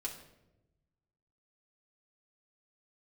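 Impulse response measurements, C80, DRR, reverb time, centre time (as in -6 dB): 11.0 dB, -2.5 dB, 0.95 s, 22 ms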